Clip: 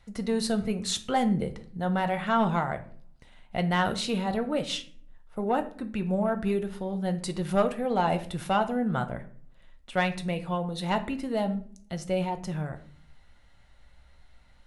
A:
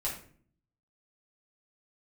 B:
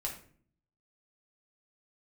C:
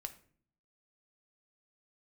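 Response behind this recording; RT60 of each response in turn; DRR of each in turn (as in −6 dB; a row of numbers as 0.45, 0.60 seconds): C; 0.50, 0.50, 0.50 seconds; −6.5, −2.0, 7.5 decibels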